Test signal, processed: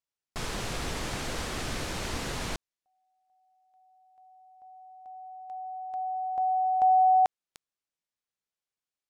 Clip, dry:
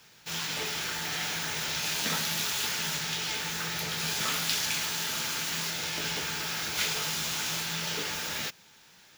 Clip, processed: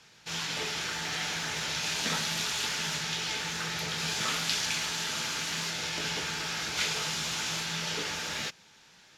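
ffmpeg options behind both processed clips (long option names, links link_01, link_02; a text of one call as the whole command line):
ffmpeg -i in.wav -af "lowpass=8200" out.wav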